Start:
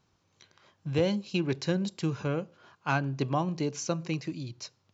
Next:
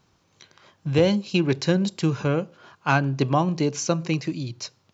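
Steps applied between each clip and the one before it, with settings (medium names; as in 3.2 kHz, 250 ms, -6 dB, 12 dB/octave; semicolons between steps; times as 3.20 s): hum notches 50/100 Hz; trim +7.5 dB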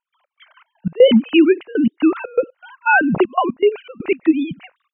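formants replaced by sine waves; trance gate ".x.xx.x.xxxxx" 120 bpm -24 dB; in parallel at +1.5 dB: peak limiter -18 dBFS, peak gain reduction 10.5 dB; on the sum: trim +3.5 dB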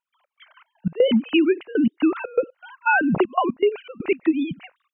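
compression, threshold -12 dBFS, peak gain reduction 7.5 dB; trim -2 dB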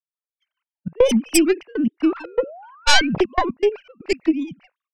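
tracing distortion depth 0.24 ms; painted sound rise, 2.20–3.07 s, 290–2500 Hz -34 dBFS; three bands expanded up and down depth 100%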